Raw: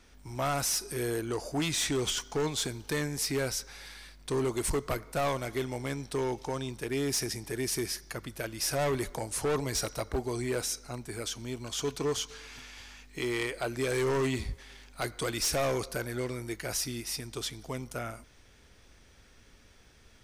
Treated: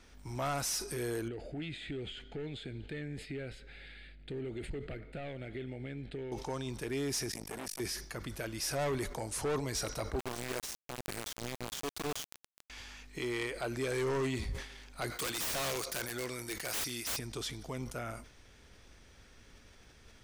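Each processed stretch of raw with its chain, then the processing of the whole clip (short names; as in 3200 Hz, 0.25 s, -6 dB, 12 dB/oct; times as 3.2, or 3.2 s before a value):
1.28–6.32 compressor 5:1, threshold -36 dBFS + air absorption 130 m + fixed phaser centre 2500 Hz, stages 4
7.31–7.8 high shelf 8900 Hz +7 dB + comb 4.2 ms, depth 49% + core saturation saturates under 2300 Hz
10.19–12.7 compressor 20:1, threshold -36 dBFS + requantised 6-bit, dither none
15.1–17.19 tilt +2.5 dB/oct + wrapped overs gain 25.5 dB
whole clip: high shelf 9700 Hz -4 dB; limiter -29 dBFS; sustainer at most 97 dB/s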